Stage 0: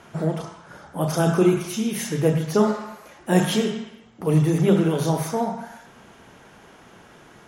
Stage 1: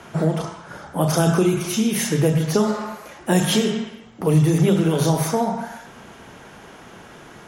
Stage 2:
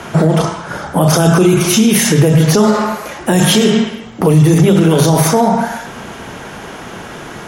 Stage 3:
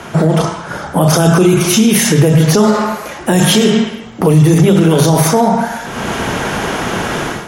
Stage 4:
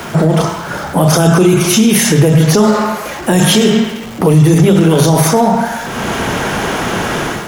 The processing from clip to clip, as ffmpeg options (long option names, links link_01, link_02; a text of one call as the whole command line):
ffmpeg -i in.wav -filter_complex "[0:a]acrossover=split=130|3000[link_01][link_02][link_03];[link_02]acompressor=threshold=-22dB:ratio=6[link_04];[link_01][link_04][link_03]amix=inputs=3:normalize=0,volume=6dB" out.wav
ffmpeg -i in.wav -af "alimiter=level_in=14.5dB:limit=-1dB:release=50:level=0:latency=1,volume=-1dB" out.wav
ffmpeg -i in.wav -af "dynaudnorm=framelen=100:gausssize=5:maxgain=13dB,volume=-1dB" out.wav
ffmpeg -i in.wav -af "aeval=exprs='val(0)+0.5*0.0473*sgn(val(0))':channel_layout=same" out.wav